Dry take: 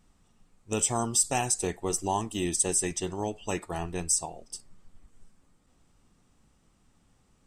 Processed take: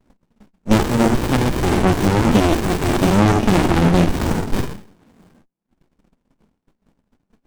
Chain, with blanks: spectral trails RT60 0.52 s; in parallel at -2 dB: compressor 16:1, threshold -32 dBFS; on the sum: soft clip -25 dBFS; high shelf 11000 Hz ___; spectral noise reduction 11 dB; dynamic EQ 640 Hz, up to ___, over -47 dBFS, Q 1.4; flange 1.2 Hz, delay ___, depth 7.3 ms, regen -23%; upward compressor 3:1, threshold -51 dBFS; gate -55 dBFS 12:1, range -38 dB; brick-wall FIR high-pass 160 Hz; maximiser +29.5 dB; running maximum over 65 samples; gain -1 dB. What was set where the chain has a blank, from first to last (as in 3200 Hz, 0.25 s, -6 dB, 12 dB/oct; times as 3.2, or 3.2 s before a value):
-11.5 dB, -3 dB, 1.8 ms